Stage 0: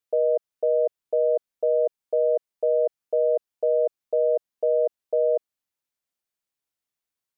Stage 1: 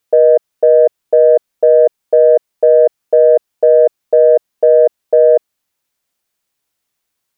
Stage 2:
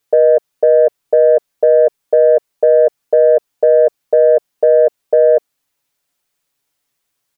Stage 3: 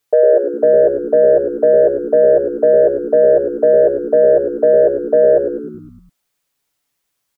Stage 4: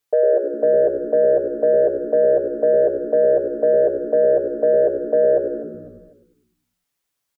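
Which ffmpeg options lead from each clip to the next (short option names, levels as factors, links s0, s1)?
-af "acontrast=62,volume=2.37"
-af "aecho=1:1:7:0.65"
-filter_complex "[0:a]asplit=8[s0][s1][s2][s3][s4][s5][s6][s7];[s1]adelay=102,afreqshift=-63,volume=0.355[s8];[s2]adelay=204,afreqshift=-126,volume=0.209[s9];[s3]adelay=306,afreqshift=-189,volume=0.123[s10];[s4]adelay=408,afreqshift=-252,volume=0.0733[s11];[s5]adelay=510,afreqshift=-315,volume=0.0432[s12];[s6]adelay=612,afreqshift=-378,volume=0.0254[s13];[s7]adelay=714,afreqshift=-441,volume=0.015[s14];[s0][s8][s9][s10][s11][s12][s13][s14]amix=inputs=8:normalize=0,volume=0.891"
-af "aecho=1:1:250|500|750:0.158|0.0555|0.0194,volume=0.531"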